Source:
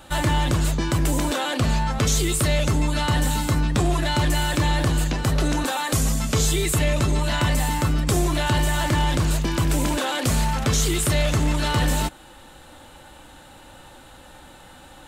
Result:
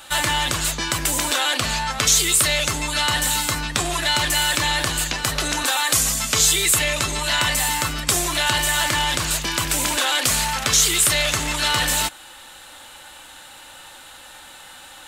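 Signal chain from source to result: tilt shelf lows -9.5 dB, about 730 Hz

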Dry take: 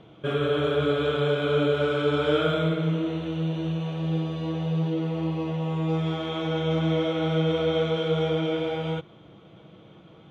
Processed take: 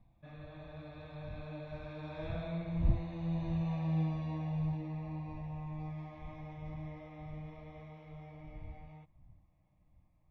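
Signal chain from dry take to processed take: wind noise 84 Hz -33 dBFS; Doppler pass-by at 3.83 s, 15 m/s, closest 9.2 m; low-pass 2.7 kHz 6 dB/octave; static phaser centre 2.1 kHz, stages 8; trim -3 dB

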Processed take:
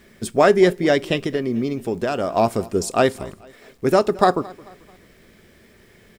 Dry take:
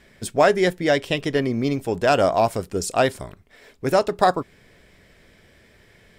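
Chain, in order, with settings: 1.19–2.36 s: compression 2.5:1, threshold -25 dBFS, peak gain reduction 8.5 dB; small resonant body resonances 220/370/1200 Hz, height 7 dB, ringing for 35 ms; bit crusher 10-bit; feedback delay 219 ms, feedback 41%, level -22 dB; on a send at -23 dB: reverberation RT60 0.45 s, pre-delay 3 ms

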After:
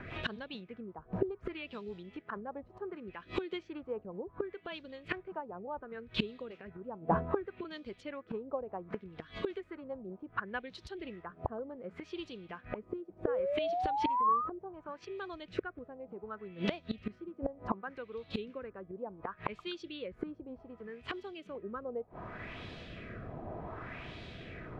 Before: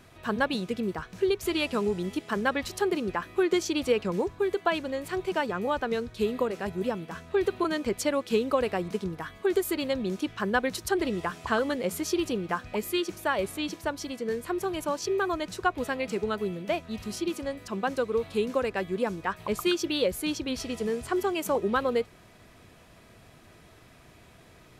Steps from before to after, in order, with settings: treble shelf 4.7 kHz -5 dB; inverted gate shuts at -27 dBFS, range -25 dB; rotary cabinet horn 5 Hz, later 0.7 Hz, at 10.47 s; painted sound rise, 13.27–14.49 s, 470–1300 Hz -44 dBFS; LFO low-pass sine 0.67 Hz 770–3900 Hz; trim +10.5 dB

